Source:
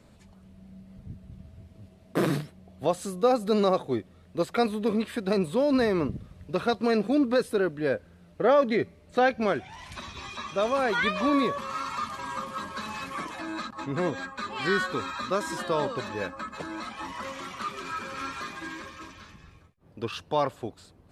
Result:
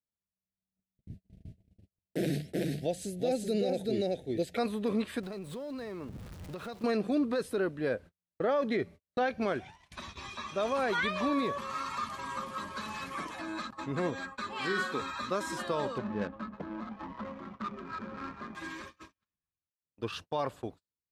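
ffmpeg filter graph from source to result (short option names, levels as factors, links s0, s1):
-filter_complex "[0:a]asettb=1/sr,asplit=3[s0][s1][s2];[s0]atrim=end=0.854[s3];[s1]atrim=start=0.85:end=4.57,asetpts=PTS-STARTPTS,afade=t=in:d=0.004:c=qsin,afade=t=out:st=3.716:d=0.004:c=qsin,asuperstop=centerf=1100:order=4:qfactor=0.94,aecho=1:1:380:0.708,atrim=end_sample=164052[s4];[s2]atrim=start=4.566[s5];[s3][s4]acrossfade=d=0.004:c1=hsin:c2=qsin[s6];[s6][s5]acrossfade=d=0.004:c1=qsin:c2=hsin,asettb=1/sr,asplit=3[s7][s8][s9];[s7]atrim=end=5.234[s10];[s8]atrim=start=5.23:end=6.84,asetpts=PTS-STARTPTS,afade=t=in:d=0.004:c=qsin,afade=t=out:st=1.606:d=0.004:c=qsin,aeval=exprs='val(0)+0.5*0.0141*sgn(val(0))':c=same,acompressor=threshold=0.0158:ratio=4:attack=3.2:release=140:knee=1:detection=peak[s11];[s9]atrim=start=6.836[s12];[s10][s11]acrossfade=d=0.004:c1=hsin:c2=qsin[s13];[s13][s12]acrossfade=d=0.004:c1=qsin:c2=hsin,asettb=1/sr,asplit=3[s14][s15][s16];[s14]atrim=end=14.534[s17];[s15]atrim=start=14.53:end=15.02,asetpts=PTS-STARTPTS,afade=t=in:d=0.004:c=qsin,afade=t=out:st=0.486:d=0.004:c=qsin,highpass=160,asplit=2[s18][s19];[s19]adelay=49,volume=0.355[s20];[s18][s20]amix=inputs=2:normalize=0,atrim=end_sample=21609[s21];[s16]atrim=start=15.016[s22];[s17][s21]acrossfade=d=0.004:c1=hsin:c2=qsin[s23];[s23][s22]acrossfade=d=0.004:c1=qsin:c2=hsin,asettb=1/sr,asplit=3[s24][s25][s26];[s24]atrim=end=15.984[s27];[s25]atrim=start=15.98:end=18.55,asetpts=PTS-STARTPTS,afade=t=in:d=0.004:c=qsin,afade=t=out:st=2.566:d=0.004:c=qsin,equalizer=f=210:t=o:w=0.26:g=13,aeval=exprs='val(0)*gte(abs(val(0)),0.00501)':c=same,adynamicsmooth=sensitivity=2:basefreq=730[s28];[s26]atrim=start=18.546[s29];[s27][s28]acrossfade=d=0.004:c1=hsin:c2=qsin[s30];[s30][s29]acrossfade=d=0.004:c1=qsin:c2=hsin,agate=range=0.00631:threshold=0.00891:ratio=16:detection=peak,alimiter=limit=0.126:level=0:latency=1:release=54,volume=0.668"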